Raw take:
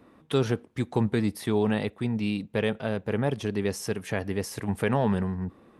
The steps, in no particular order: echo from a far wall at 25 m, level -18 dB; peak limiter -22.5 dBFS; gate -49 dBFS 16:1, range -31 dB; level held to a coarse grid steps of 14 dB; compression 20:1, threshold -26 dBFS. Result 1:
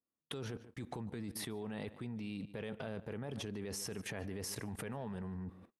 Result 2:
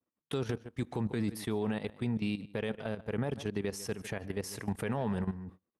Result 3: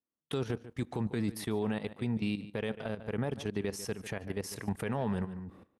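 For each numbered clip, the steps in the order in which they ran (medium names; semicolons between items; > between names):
peak limiter > echo from a far wall > gate > level held to a coarse grid > compression; echo from a far wall > level held to a coarse grid > gate > peak limiter > compression; gate > level held to a coarse grid > echo from a far wall > compression > peak limiter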